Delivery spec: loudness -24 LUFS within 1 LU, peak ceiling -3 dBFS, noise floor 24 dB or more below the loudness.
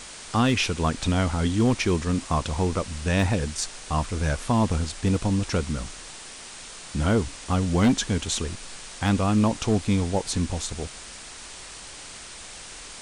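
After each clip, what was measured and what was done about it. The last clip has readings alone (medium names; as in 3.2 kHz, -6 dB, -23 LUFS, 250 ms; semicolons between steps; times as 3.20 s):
clipped samples 0.6%; clipping level -14.0 dBFS; noise floor -42 dBFS; noise floor target -49 dBFS; loudness -25.0 LUFS; peak level -14.0 dBFS; loudness target -24.0 LUFS
-> clip repair -14 dBFS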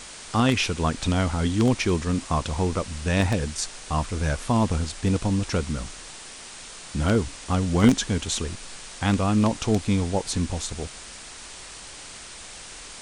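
clipped samples 0.0%; noise floor -42 dBFS; noise floor target -49 dBFS
-> noise print and reduce 7 dB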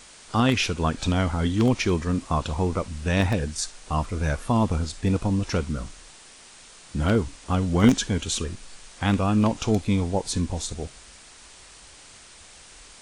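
noise floor -48 dBFS; noise floor target -49 dBFS
-> noise print and reduce 6 dB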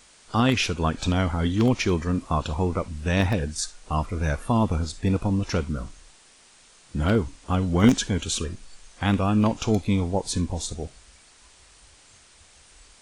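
noise floor -54 dBFS; loudness -25.0 LUFS; peak level -5.0 dBFS; loudness target -24.0 LUFS
-> trim +1 dB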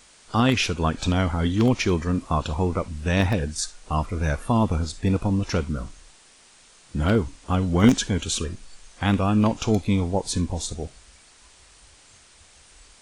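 loudness -24.0 LUFS; peak level -4.0 dBFS; noise floor -53 dBFS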